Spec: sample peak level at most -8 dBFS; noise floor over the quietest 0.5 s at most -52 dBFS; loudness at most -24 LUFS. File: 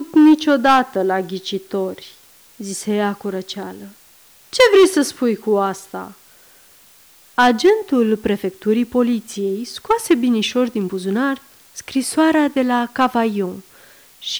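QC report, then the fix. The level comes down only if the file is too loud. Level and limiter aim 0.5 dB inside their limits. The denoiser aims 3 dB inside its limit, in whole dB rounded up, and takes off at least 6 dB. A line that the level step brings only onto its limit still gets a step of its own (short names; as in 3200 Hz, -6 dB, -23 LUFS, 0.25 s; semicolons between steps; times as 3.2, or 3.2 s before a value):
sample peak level -5.5 dBFS: fail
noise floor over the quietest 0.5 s -49 dBFS: fail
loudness -17.5 LUFS: fail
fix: gain -7 dB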